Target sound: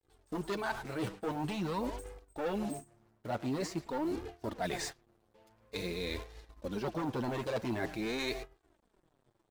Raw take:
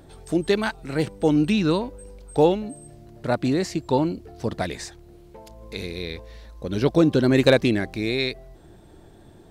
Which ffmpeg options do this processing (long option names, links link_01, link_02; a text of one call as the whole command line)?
ffmpeg -i in.wav -filter_complex "[0:a]asoftclip=type=hard:threshold=-19dB,asplit=2[link_01][link_02];[link_02]adelay=110,highpass=300,lowpass=3400,asoftclip=type=hard:threshold=-28.5dB,volume=-12dB[link_03];[link_01][link_03]amix=inputs=2:normalize=0,adynamicequalizer=threshold=0.01:dfrequency=870:dqfactor=0.88:tfrequency=870:tqfactor=0.88:attack=5:release=100:ratio=0.375:range=3.5:mode=boostabove:tftype=bell,acrusher=bits=6:mix=0:aa=0.5,flanger=delay=2.4:depth=7.1:regen=3:speed=0.47:shape=sinusoidal,agate=range=-19dB:threshold=-40dB:ratio=16:detection=peak,areverse,acompressor=threshold=-33dB:ratio=6,areverse" out.wav